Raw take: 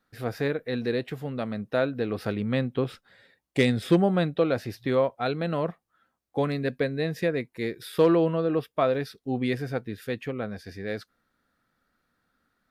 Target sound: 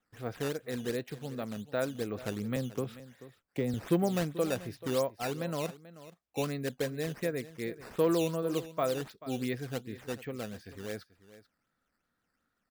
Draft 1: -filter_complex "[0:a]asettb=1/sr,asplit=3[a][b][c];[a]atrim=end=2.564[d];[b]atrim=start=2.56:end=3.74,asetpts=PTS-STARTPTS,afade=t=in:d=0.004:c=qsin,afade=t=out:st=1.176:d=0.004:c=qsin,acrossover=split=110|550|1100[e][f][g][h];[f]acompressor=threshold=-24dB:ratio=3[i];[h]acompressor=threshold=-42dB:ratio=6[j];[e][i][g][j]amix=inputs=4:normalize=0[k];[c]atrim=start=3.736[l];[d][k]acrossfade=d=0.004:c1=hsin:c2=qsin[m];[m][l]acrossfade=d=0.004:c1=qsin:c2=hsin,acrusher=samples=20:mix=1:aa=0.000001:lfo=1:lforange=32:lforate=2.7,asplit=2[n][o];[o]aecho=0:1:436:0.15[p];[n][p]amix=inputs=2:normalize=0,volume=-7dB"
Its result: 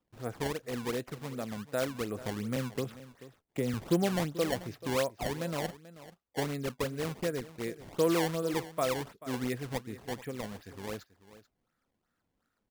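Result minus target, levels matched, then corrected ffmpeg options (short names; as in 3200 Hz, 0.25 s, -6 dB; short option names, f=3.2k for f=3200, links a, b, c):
decimation with a swept rate: distortion +7 dB
-filter_complex "[0:a]asettb=1/sr,asplit=3[a][b][c];[a]atrim=end=2.564[d];[b]atrim=start=2.56:end=3.74,asetpts=PTS-STARTPTS,afade=t=in:d=0.004:c=qsin,afade=t=out:st=1.176:d=0.004:c=qsin,acrossover=split=110|550|1100[e][f][g][h];[f]acompressor=threshold=-24dB:ratio=3[i];[h]acompressor=threshold=-42dB:ratio=6[j];[e][i][g][j]amix=inputs=4:normalize=0[k];[c]atrim=start=3.736[l];[d][k]acrossfade=d=0.004:c1=hsin:c2=qsin[m];[m][l]acrossfade=d=0.004:c1=qsin:c2=hsin,acrusher=samples=8:mix=1:aa=0.000001:lfo=1:lforange=12.8:lforate=2.7,asplit=2[n][o];[o]aecho=0:1:436:0.15[p];[n][p]amix=inputs=2:normalize=0,volume=-7dB"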